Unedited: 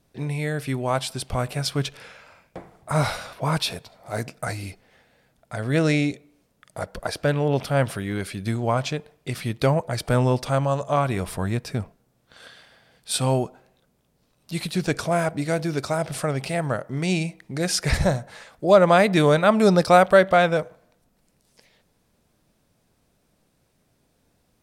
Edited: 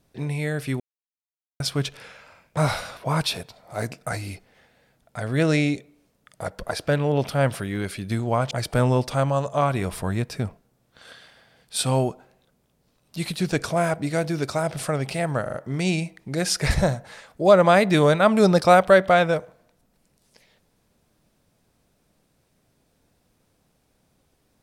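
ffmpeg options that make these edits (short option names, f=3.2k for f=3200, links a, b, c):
-filter_complex "[0:a]asplit=8[a][b][c][d][e][f][g][h];[a]atrim=end=0.8,asetpts=PTS-STARTPTS,afade=t=out:st=0.796:d=0.004:c=hsin[i];[b]atrim=start=0.8:end=1.6,asetpts=PTS-STARTPTS,volume=0[j];[c]atrim=start=1.6:end=2.572,asetpts=PTS-STARTPTS,afade=t=in:d=0.004:c=hsin[k];[d]atrim=start=2.928:end=8.872[l];[e]atrim=start=9.858:end=16.812[m];[f]atrim=start=16.768:end=16.812[n];[g]atrim=start=16.768:end=16.812[o];[h]atrim=start=16.768[p];[i][j][k]concat=n=3:v=0:a=1[q];[q][l]acrossfade=d=0.004:c1=hsin:c2=hsin[r];[r][m]acrossfade=d=0.004:c1=hsin:c2=hsin[s];[s][n]acrossfade=d=0.004:c1=hsin:c2=hsin[t];[t][o]acrossfade=d=0.004:c1=hsin:c2=hsin[u];[u][p]acrossfade=d=0.004:c1=hsin:c2=hsin"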